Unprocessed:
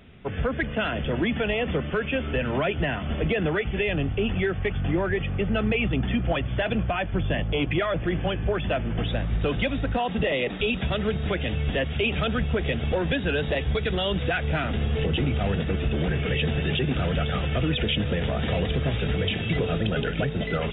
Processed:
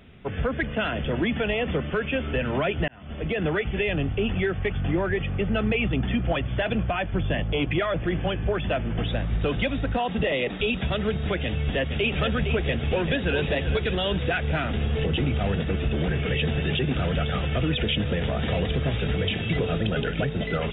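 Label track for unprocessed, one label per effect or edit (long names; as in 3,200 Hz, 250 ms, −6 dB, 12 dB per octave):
2.880000	3.480000	fade in
11.440000	12.130000	delay throw 460 ms, feedback 70%, level −7 dB
12.630000	13.380000	delay throw 390 ms, feedback 50%, level −9 dB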